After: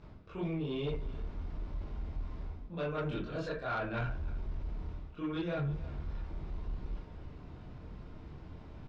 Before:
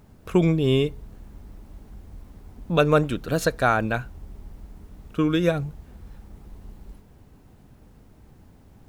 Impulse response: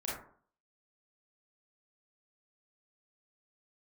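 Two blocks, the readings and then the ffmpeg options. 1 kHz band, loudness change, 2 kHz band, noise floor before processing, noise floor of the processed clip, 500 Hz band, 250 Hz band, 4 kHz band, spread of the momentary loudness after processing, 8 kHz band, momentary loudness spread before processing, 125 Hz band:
-14.5 dB, -16.5 dB, -13.5 dB, -53 dBFS, -51 dBFS, -15.0 dB, -14.0 dB, -15.0 dB, 14 LU, under -25 dB, 10 LU, -11.0 dB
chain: -filter_complex "[0:a]areverse,acompressor=threshold=-34dB:ratio=12,areverse,aecho=1:1:312:0.0944[a];[1:a]atrim=start_sample=2205,asetrate=70560,aresample=44100[b];[a][b]afir=irnorm=-1:irlink=0,asoftclip=type=tanh:threshold=-33dB,lowpass=f=5.1k:w=0.5412,lowpass=f=5.1k:w=1.3066,volume=4.5dB"

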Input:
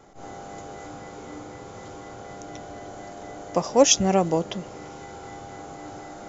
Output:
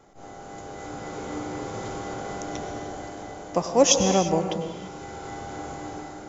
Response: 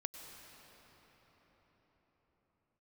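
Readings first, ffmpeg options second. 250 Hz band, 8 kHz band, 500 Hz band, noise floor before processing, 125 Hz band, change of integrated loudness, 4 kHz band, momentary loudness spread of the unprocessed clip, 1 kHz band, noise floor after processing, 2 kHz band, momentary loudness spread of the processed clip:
0.0 dB, n/a, 0.0 dB, -41 dBFS, +0.5 dB, -5.5 dB, -0.5 dB, 21 LU, +0.5 dB, -42 dBFS, +1.0 dB, 19 LU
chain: -filter_complex "[0:a]dynaudnorm=f=380:g=5:m=9.5dB[a];[1:a]atrim=start_sample=2205,afade=t=out:st=0.41:d=0.01,atrim=end_sample=18522[b];[a][b]afir=irnorm=-1:irlink=0"

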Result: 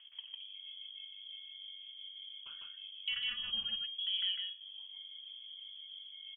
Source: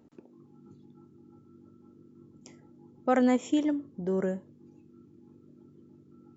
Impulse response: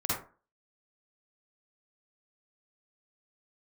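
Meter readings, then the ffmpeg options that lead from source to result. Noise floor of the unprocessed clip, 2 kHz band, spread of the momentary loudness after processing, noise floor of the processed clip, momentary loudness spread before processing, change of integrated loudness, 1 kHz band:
-58 dBFS, -3.0 dB, 12 LU, -53 dBFS, 10 LU, -11.0 dB, -27.5 dB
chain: -filter_complex "[0:a]highshelf=f=2.4k:g=10.5,lowpass=f=3k:t=q:w=0.5098,lowpass=f=3k:t=q:w=0.6013,lowpass=f=3k:t=q:w=0.9,lowpass=f=3k:t=q:w=2.563,afreqshift=-3500,equalizer=f=390:t=o:w=2.9:g=-14.5,acrossover=split=190[a][b];[b]acompressor=threshold=-43dB:ratio=4[c];[a][c]amix=inputs=2:normalize=0,flanger=delay=1.6:depth=8.3:regen=-67:speed=0.49:shape=triangular,aecho=1:1:5.1:0.32,asplit=2[d][e];[e]aecho=0:1:52.48|151.6:0.316|0.794[f];[d][f]amix=inputs=2:normalize=0,volume=8dB"

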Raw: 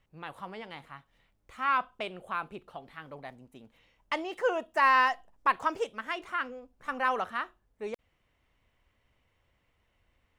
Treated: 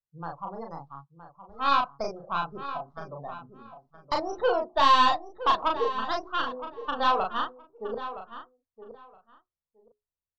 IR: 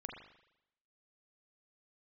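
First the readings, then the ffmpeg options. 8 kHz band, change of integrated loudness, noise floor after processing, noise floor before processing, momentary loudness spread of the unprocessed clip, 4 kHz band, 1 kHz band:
n/a, +3.0 dB, under -85 dBFS, -74 dBFS, 20 LU, +10.0 dB, +5.0 dB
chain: -filter_complex "[0:a]bandreject=f=60:t=h:w=6,bandreject=f=120:t=h:w=6,bandreject=f=180:t=h:w=6,bandreject=f=240:t=h:w=6,bandreject=f=300:t=h:w=6,bandreject=f=360:t=h:w=6,bandreject=f=420:t=h:w=6,acrossover=split=220|1600[a][b][c];[c]aeval=exprs='abs(val(0))':c=same[d];[a][b][d]amix=inputs=3:normalize=0,afftdn=nr=35:nf=-43,lowshelf=f=190:t=q:w=1.5:g=7.5,asplit=2[e][f];[f]highpass=f=720:p=1,volume=14dB,asoftclip=type=tanh:threshold=-11.5dB[g];[e][g]amix=inputs=2:normalize=0,lowpass=f=1.5k:p=1,volume=-6dB,aexciter=amount=4.1:drive=4.9:freq=2.8k,lowpass=4.3k,asplit=2[h][i];[i]adelay=36,volume=-3dB[j];[h][j]amix=inputs=2:normalize=0,asplit=2[k][l];[l]adelay=968,lowpass=f=2.6k:p=1,volume=-12dB,asplit=2[m][n];[n]adelay=968,lowpass=f=2.6k:p=1,volume=0.18[o];[m][o]amix=inputs=2:normalize=0[p];[k][p]amix=inputs=2:normalize=0"

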